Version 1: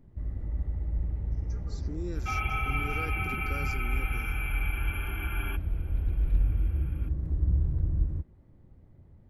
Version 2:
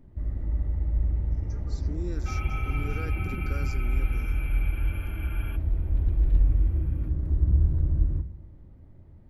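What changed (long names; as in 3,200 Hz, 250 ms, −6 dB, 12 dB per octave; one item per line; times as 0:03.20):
second sound −7.5 dB
reverb: on, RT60 0.85 s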